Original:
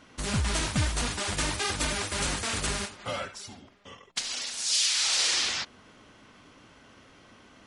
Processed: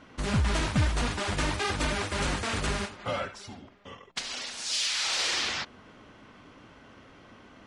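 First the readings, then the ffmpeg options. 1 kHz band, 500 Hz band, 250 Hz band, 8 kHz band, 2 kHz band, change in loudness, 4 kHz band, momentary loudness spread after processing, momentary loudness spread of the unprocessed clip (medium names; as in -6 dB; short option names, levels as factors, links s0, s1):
+2.0 dB, +2.5 dB, +2.5 dB, -6.5 dB, +0.5 dB, -1.5 dB, -3.0 dB, 14 LU, 13 LU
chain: -filter_complex "[0:a]lowpass=f=2400:p=1,asplit=2[s0][s1];[s1]asoftclip=type=tanh:threshold=0.0631,volume=0.447[s2];[s0][s2]amix=inputs=2:normalize=0"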